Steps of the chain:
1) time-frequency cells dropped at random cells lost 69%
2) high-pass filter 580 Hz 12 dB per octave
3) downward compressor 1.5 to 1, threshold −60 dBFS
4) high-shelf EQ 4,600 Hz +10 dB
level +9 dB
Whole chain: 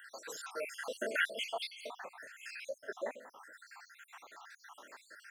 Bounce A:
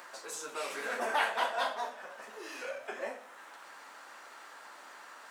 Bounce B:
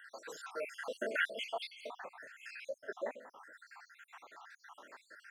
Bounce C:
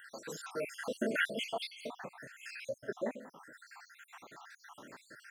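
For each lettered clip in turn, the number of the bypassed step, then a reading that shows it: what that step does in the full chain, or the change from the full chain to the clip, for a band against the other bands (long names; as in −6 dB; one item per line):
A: 1, 1 kHz band +8.5 dB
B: 4, 8 kHz band −6.5 dB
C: 2, change in crest factor −1.5 dB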